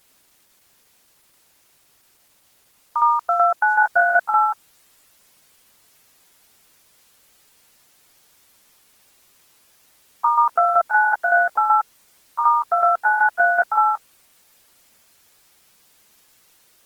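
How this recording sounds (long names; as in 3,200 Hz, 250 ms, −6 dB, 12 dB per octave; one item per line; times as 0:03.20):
tremolo saw down 5.3 Hz, depth 65%
a quantiser's noise floor 10 bits, dither triangular
Opus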